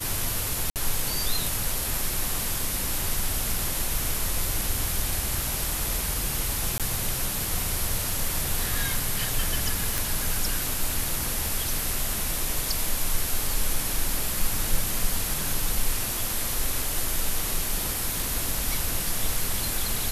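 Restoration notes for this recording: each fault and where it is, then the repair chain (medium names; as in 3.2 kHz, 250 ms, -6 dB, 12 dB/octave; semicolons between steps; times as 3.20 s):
0.70–0.76 s: dropout 58 ms
6.78–6.80 s: dropout 17 ms
9.98 s: pop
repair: de-click; interpolate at 0.70 s, 58 ms; interpolate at 6.78 s, 17 ms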